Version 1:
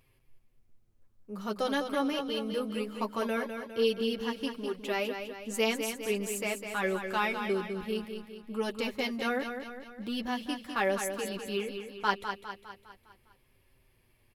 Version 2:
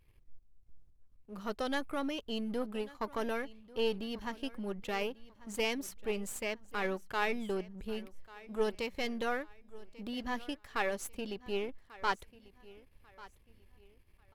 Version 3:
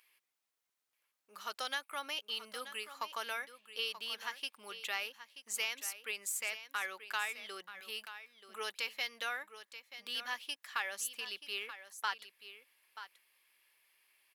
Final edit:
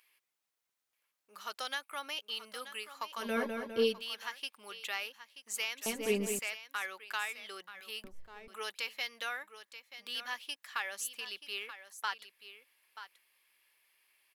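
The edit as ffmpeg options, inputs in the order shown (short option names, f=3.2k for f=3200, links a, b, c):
-filter_complex "[0:a]asplit=2[a][b];[2:a]asplit=4[c][d][e][f];[c]atrim=end=3.39[g];[a]atrim=start=3.15:end=4.03[h];[d]atrim=start=3.79:end=5.862[i];[b]atrim=start=5.858:end=6.392[j];[e]atrim=start=6.388:end=8.042[k];[1:a]atrim=start=8.038:end=8.482[l];[f]atrim=start=8.478[m];[g][h]acrossfade=d=0.24:c1=tri:c2=tri[n];[n][i]acrossfade=d=0.24:c1=tri:c2=tri[o];[o][j]acrossfade=d=0.004:c1=hsin:c2=hsin[p];[p][k]acrossfade=d=0.004:c1=hsin:c2=hsin[q];[q][l]acrossfade=d=0.004:c1=hsin:c2=hsin[r];[r][m]acrossfade=d=0.004:c1=hsin:c2=hsin"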